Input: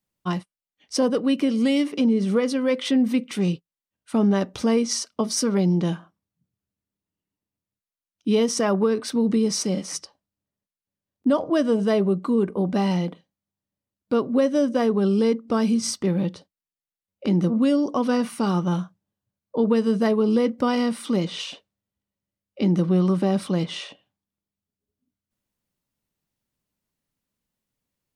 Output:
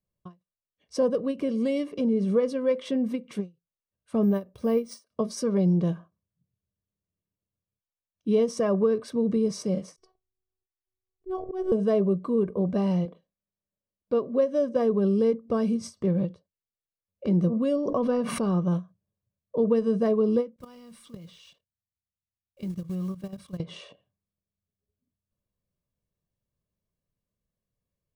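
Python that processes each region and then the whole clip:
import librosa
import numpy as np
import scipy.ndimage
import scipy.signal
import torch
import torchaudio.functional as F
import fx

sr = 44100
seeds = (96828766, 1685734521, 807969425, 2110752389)

y = fx.chain(x, sr, fx.resample_bad(factor=3, down='filtered', up='hold'),
    fx.upward_expand(threshold_db=-36.0, expansion=1.5), at=(4.23, 5.11))
y = fx.chain(y, sr, fx.robotise(hz=375.0),
    fx.tilt_shelf(db=4.5, hz=800.0),
    fx.auto_swell(attack_ms=142.0), at=(9.96, 11.72))
y = fx.chain(y, sr, fx.lowpass(hz=8600.0, slope=12),
    fx.peak_eq(hz=110.0, db=-13.5, octaves=0.97), at=(13.05, 14.76))
y = fx.chain(y, sr, fx.high_shelf(hz=5600.0, db=-10.5),
    fx.pre_swell(db_per_s=29.0), at=(17.76, 18.62))
y = fx.chain(y, sr, fx.block_float(bits=5),
    fx.peak_eq(hz=470.0, db=-12.5, octaves=2.8),
    fx.level_steps(step_db=14), at=(20.56, 23.6))
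y = fx.tilt_shelf(y, sr, db=7.0, hz=870.0)
y = y + 0.54 * np.pad(y, (int(1.8 * sr / 1000.0), 0))[:len(y)]
y = fx.end_taper(y, sr, db_per_s=280.0)
y = F.gain(torch.from_numpy(y), -7.0).numpy()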